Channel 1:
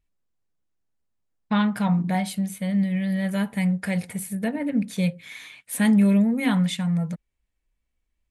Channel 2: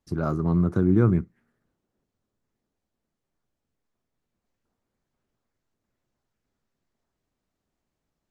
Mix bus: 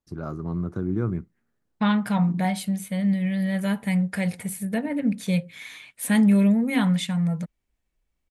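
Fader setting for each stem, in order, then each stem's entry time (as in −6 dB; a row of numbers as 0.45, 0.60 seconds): 0.0, −6.5 decibels; 0.30, 0.00 seconds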